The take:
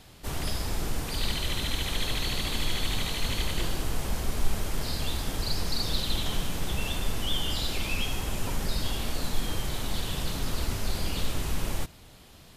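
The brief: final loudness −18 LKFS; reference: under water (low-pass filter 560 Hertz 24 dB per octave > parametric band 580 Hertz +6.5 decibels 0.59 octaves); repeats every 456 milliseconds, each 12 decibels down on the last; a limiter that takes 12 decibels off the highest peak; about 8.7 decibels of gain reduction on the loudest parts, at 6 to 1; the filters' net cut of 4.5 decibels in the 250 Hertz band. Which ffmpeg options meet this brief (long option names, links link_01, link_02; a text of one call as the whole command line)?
ffmpeg -i in.wav -af "equalizer=frequency=250:width_type=o:gain=-7,acompressor=threshold=-26dB:ratio=6,alimiter=level_in=6dB:limit=-24dB:level=0:latency=1,volume=-6dB,lowpass=frequency=560:width=0.5412,lowpass=frequency=560:width=1.3066,equalizer=frequency=580:width_type=o:width=0.59:gain=6.5,aecho=1:1:456|912|1368:0.251|0.0628|0.0157,volume=27.5dB" out.wav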